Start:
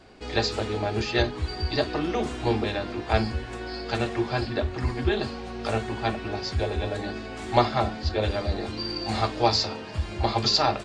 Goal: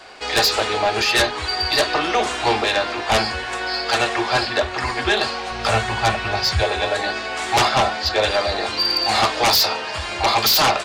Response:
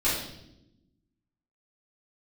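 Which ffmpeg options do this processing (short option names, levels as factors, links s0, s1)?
-filter_complex "[0:a]asettb=1/sr,asplit=3[s0][s1][s2];[s0]atrim=end=5.514[s3];[s1]atrim=start=5.51:end=6.63,asetpts=PTS-STARTPTS,afade=t=in:d=0.004:c=qsin,afade=t=out:st=1.116:d=0.004:c=qsin,lowshelf=f=210:t=q:w=1.5:g=9.5[s4];[s2]atrim=start=6.626[s5];[s3][s4]acrossfade=d=0.004:c1=hsin:c2=qsin[s6];[s6][s5]acrossfade=d=0.004:c1=qsin:c2=hsin,acrossover=split=560[s7][s8];[s8]aeval=exprs='0.447*sin(PI/2*6.31*val(0)/0.447)':c=same[s9];[s7][s9]amix=inputs=2:normalize=0,volume=0.562"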